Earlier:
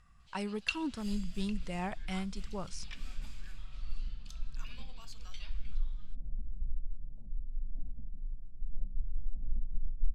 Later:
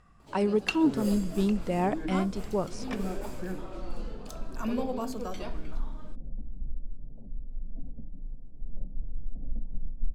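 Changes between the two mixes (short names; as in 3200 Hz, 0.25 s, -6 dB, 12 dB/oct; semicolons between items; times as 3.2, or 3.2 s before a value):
first sound: remove band-pass 3300 Hz, Q 1.3; master: add bell 410 Hz +14.5 dB 2.7 oct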